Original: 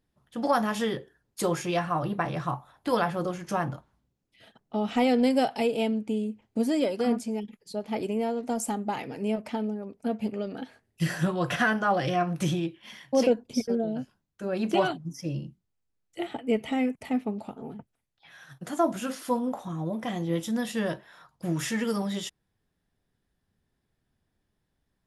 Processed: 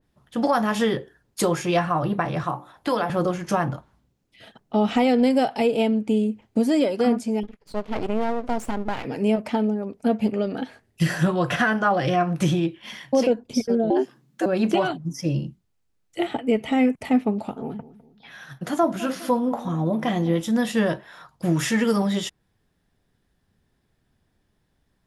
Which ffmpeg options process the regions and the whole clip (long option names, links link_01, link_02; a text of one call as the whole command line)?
ffmpeg -i in.wav -filter_complex "[0:a]asettb=1/sr,asplit=3[link_01][link_02][link_03];[link_01]atrim=end=2.434[link_04];[link_02]atrim=start=2.43:end=3.1,asetpts=PTS-STARTPTS,afade=type=in:duration=0.004:curve=qsin,afade=type=out:start_time=0.666:duration=0.004:curve=qsin,bandreject=frequency=60:width_type=h:width=6,bandreject=frequency=120:width_type=h:width=6,bandreject=frequency=180:width_type=h:width=6,bandreject=frequency=240:width_type=h:width=6,bandreject=frequency=300:width_type=h:width=6,bandreject=frequency=360:width_type=h:width=6,bandreject=frequency=420:width_type=h:width=6,bandreject=frequency=480:width_type=h:width=6,bandreject=frequency=540:width_type=h:width=6,acrossover=split=200|640|7400[link_05][link_06][link_07][link_08];[link_05]acompressor=threshold=-52dB:ratio=3[link_09];[link_06]acompressor=threshold=-32dB:ratio=3[link_10];[link_07]acompressor=threshold=-34dB:ratio=3[link_11];[link_08]acompressor=threshold=-58dB:ratio=3[link_12];[link_09][link_10][link_11][link_12]amix=inputs=4:normalize=0[link_13];[link_03]atrim=start=3.096[link_14];[link_04][link_13]acrossfade=duration=0.004:curve1=hsin:curve2=qsin[link_15];[link_15][link_14]acrossfade=duration=0.004:curve1=qsin:curve2=hsin,asettb=1/sr,asplit=3[link_16][link_17][link_18];[link_16]atrim=end=7.434[link_19];[link_17]atrim=start=7.43:end=9.05,asetpts=PTS-STARTPTS,afade=type=in:duration=0.004:curve=qsin,afade=type=out:start_time=1.616:duration=0.004:curve=qsin,lowpass=frequency=2900:poles=1,bandreject=frequency=850:width=12,aeval=exprs='max(val(0),0)':channel_layout=same[link_20];[link_18]atrim=start=9.046[link_21];[link_19][link_20]acrossfade=duration=0.004:curve1=hsin:curve2=qsin[link_22];[link_22][link_21]acrossfade=duration=0.004:curve1=qsin:curve2=hsin,asettb=1/sr,asplit=3[link_23][link_24][link_25];[link_23]atrim=end=13.904[link_26];[link_24]atrim=start=13.9:end=14.46,asetpts=PTS-STARTPTS,afade=type=in:duration=0.004:curve=qsin,afade=type=out:start_time=0.556:duration=0.004:curve=qsin,asubboost=boost=10:cutoff=150,acontrast=63,afreqshift=130[link_27];[link_25]atrim=start=14.456[link_28];[link_26][link_27]acrossfade=duration=0.004:curve1=hsin:curve2=qsin[link_29];[link_29][link_28]acrossfade=duration=0.004:curve1=qsin:curve2=hsin,asettb=1/sr,asplit=3[link_30][link_31][link_32];[link_30]atrim=end=17.594[link_33];[link_31]atrim=start=17.59:end=20.41,asetpts=PTS-STARTPTS,afade=type=in:duration=0.004:curve=qsin,afade=type=out:start_time=2.816:duration=0.004:curve=qsin,equalizer=frequency=8000:width_type=o:width=0.47:gain=-6,asplit=2[link_34][link_35];[link_35]adelay=204,lowpass=frequency=820:poles=1,volume=-15.5dB,asplit=2[link_36][link_37];[link_37]adelay=204,lowpass=frequency=820:poles=1,volume=0.45,asplit=2[link_38][link_39];[link_39]adelay=204,lowpass=frequency=820:poles=1,volume=0.45,asplit=2[link_40][link_41];[link_41]adelay=204,lowpass=frequency=820:poles=1,volume=0.45[link_42];[link_34][link_36][link_38][link_40][link_42]amix=inputs=5:normalize=0,atrim=end_sample=124362[link_43];[link_32]atrim=start=20.406[link_44];[link_33][link_43]acrossfade=duration=0.004:curve1=hsin:curve2=qsin[link_45];[link_45][link_44]acrossfade=duration=0.004:curve1=qsin:curve2=hsin,highshelf=frequency=10000:gain=-4,alimiter=limit=-19dB:level=0:latency=1:release=362,adynamicequalizer=threshold=0.00562:dfrequency=2500:dqfactor=0.7:tfrequency=2500:tqfactor=0.7:attack=5:release=100:ratio=0.375:range=1.5:mode=cutabove:tftype=highshelf,volume=8dB" out.wav